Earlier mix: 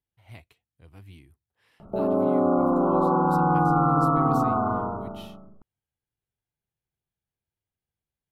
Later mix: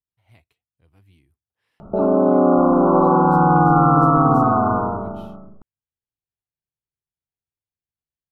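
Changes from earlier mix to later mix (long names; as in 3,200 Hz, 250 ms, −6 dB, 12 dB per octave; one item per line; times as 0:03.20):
speech −8.0 dB
background +7.0 dB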